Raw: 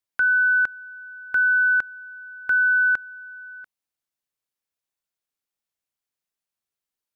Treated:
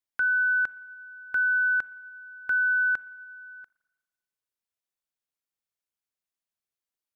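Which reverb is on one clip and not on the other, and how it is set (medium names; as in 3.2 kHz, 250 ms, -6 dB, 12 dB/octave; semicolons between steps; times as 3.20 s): spring tank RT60 1.3 s, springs 39/55 ms, chirp 60 ms, DRR 20 dB; trim -5 dB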